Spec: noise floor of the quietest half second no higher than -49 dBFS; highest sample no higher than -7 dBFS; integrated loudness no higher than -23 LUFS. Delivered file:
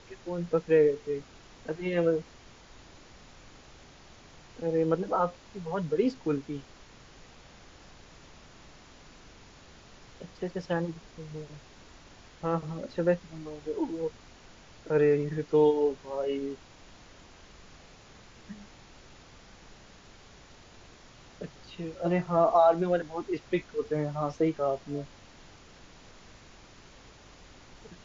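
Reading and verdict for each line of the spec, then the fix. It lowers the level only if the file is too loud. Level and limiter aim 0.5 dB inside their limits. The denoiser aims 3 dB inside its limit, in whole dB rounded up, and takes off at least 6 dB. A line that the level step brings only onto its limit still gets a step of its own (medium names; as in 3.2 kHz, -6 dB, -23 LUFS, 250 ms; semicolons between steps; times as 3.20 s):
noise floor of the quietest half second -53 dBFS: pass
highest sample -11.5 dBFS: pass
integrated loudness -29.5 LUFS: pass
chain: none needed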